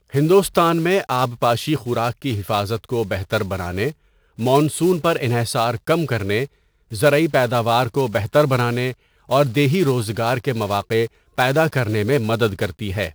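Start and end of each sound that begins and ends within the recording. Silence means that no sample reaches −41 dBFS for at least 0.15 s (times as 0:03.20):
0:04.38–0:06.47
0:06.91–0:08.94
0:09.29–0:11.07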